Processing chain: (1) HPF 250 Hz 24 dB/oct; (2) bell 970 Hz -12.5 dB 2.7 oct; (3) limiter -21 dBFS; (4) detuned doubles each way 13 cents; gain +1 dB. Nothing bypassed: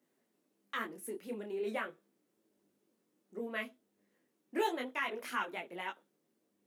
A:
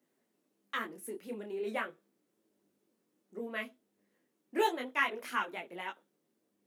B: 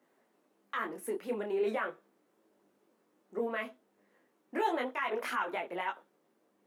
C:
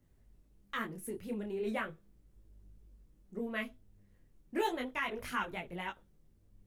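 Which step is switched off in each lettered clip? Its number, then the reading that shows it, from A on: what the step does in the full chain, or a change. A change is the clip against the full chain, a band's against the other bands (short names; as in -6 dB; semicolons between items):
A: 3, crest factor change +3.5 dB; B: 2, 4 kHz band -3.5 dB; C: 1, 250 Hz band +3.5 dB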